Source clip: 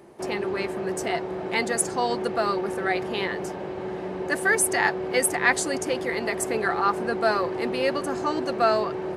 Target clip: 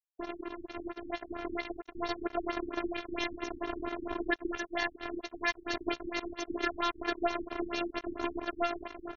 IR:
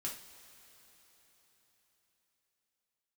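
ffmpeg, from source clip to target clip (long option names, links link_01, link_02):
-af "aecho=1:1:92|184|276|368|460:0.282|0.127|0.0571|0.0257|0.0116,acompressor=threshold=-33dB:ratio=6,acrusher=bits=4:mix=0:aa=0.5,highshelf=frequency=7700:width_type=q:width=1.5:gain=-13.5,bandreject=frequency=4800:width=6.5,afftfilt=real='hypot(re,im)*cos(PI*b)':imag='0':win_size=512:overlap=0.75,dynaudnorm=framelen=200:gausssize=13:maxgain=6.5dB,afftfilt=real='re*lt(b*sr/1024,330*pow(7000/330,0.5+0.5*sin(2*PI*4.4*pts/sr)))':imag='im*lt(b*sr/1024,330*pow(7000/330,0.5+0.5*sin(2*PI*4.4*pts/sr)))':win_size=1024:overlap=0.75,volume=1.5dB"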